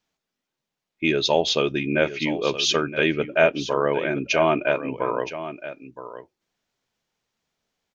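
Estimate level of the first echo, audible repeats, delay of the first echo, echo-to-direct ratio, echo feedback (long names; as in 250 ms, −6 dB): −12.5 dB, 1, 969 ms, −12.5 dB, repeats not evenly spaced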